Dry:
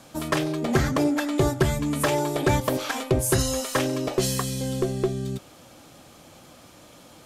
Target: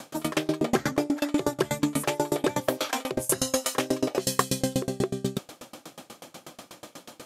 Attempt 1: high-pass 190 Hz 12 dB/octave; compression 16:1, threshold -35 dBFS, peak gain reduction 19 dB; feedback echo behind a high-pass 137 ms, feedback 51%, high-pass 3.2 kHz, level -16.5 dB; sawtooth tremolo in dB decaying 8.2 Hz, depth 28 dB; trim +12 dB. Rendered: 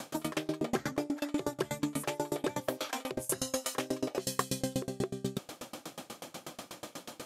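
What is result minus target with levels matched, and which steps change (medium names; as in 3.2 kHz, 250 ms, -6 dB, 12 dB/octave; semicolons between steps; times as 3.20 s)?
compression: peak gain reduction +8 dB
change: compression 16:1, threshold -26.5 dBFS, peak gain reduction 11 dB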